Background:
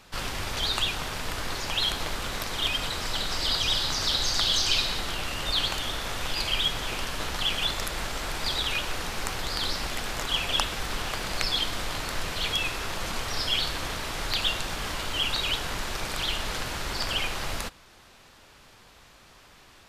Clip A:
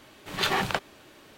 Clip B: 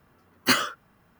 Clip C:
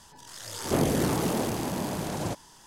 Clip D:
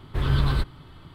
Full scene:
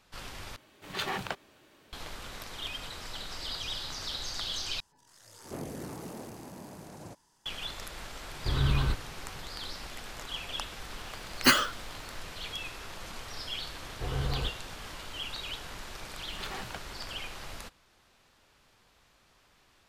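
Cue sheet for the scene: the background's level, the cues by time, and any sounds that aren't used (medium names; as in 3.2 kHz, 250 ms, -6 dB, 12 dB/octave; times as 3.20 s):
background -11 dB
0.56 s: replace with A -8 dB
4.80 s: replace with C -15 dB + peaking EQ 3.3 kHz -4.5 dB 0.39 oct
8.31 s: add D -5 dB
10.98 s: add B -0.5 dB
13.86 s: add D -11 dB + small resonant body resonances 490/730/2900 Hz, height 14 dB
16.00 s: add A -15 dB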